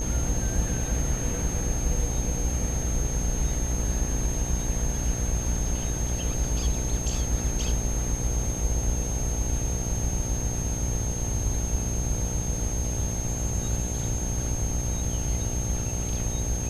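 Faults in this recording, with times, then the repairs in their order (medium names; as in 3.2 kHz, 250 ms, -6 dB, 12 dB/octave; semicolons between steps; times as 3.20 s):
buzz 60 Hz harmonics 15 -31 dBFS
whine 6.4 kHz -33 dBFS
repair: band-stop 6.4 kHz, Q 30; de-hum 60 Hz, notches 15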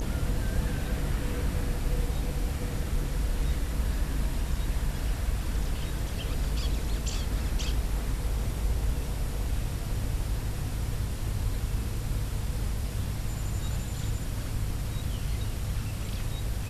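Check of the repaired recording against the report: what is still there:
nothing left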